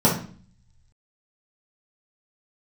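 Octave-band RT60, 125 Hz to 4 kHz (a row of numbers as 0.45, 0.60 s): 1.3, 0.75, 0.45, 0.45, 0.40, 0.40 s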